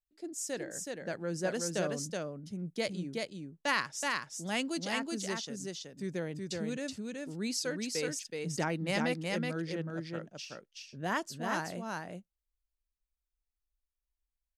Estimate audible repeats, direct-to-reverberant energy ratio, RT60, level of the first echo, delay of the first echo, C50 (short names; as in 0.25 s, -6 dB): 1, none, none, -3.0 dB, 0.374 s, none